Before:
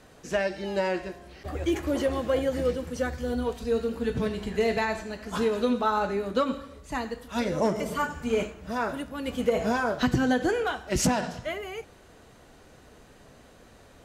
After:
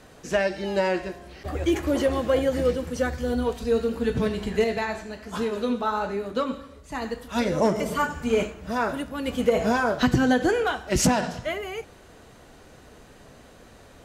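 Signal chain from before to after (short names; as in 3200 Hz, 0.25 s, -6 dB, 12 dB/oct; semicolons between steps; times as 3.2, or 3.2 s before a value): 4.64–7.02 flange 1.2 Hz, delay 7.6 ms, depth 7.7 ms, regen -71%; gain +3.5 dB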